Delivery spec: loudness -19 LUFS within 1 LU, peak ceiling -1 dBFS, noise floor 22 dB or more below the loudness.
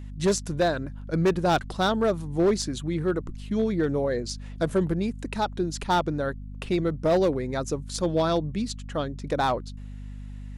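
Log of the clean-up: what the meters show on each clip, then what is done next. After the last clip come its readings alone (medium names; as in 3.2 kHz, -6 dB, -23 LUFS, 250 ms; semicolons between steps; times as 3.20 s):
clipped samples 1.3%; clipping level -16.5 dBFS; hum 50 Hz; highest harmonic 250 Hz; hum level -36 dBFS; loudness -26.5 LUFS; peak level -16.5 dBFS; loudness target -19.0 LUFS
-> clip repair -16.5 dBFS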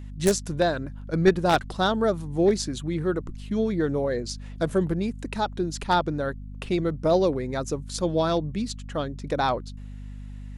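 clipped samples 0.0%; hum 50 Hz; highest harmonic 250 Hz; hum level -36 dBFS
-> hum notches 50/100/150/200/250 Hz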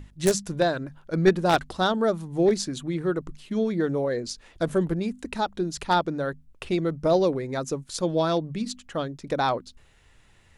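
hum not found; loudness -26.0 LUFS; peak level -7.0 dBFS; loudness target -19.0 LUFS
-> trim +7 dB; peak limiter -1 dBFS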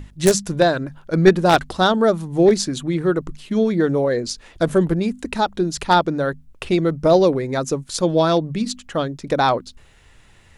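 loudness -19.0 LUFS; peak level -1.0 dBFS; noise floor -50 dBFS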